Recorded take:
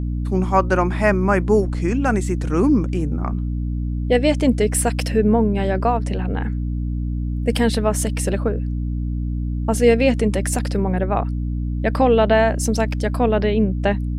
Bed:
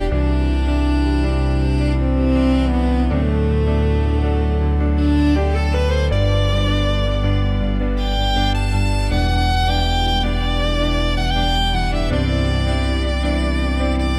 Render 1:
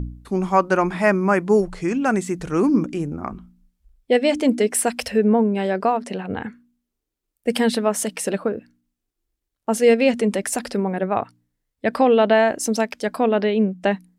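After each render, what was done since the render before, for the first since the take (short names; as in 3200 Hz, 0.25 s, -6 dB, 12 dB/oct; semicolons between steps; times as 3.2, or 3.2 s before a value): de-hum 60 Hz, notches 5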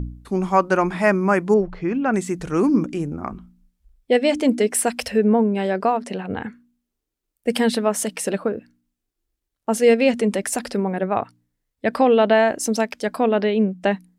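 1.54–2.14 air absorption 270 m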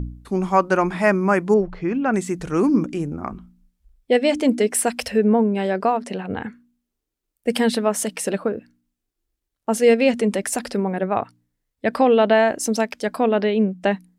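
nothing audible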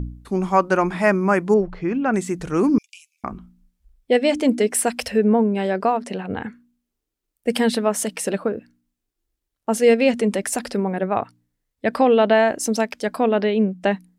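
2.78–3.24 steep high-pass 2400 Hz 72 dB/oct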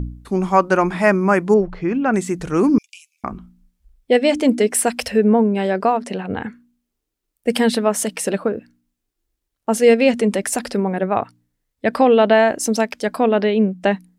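gain +2.5 dB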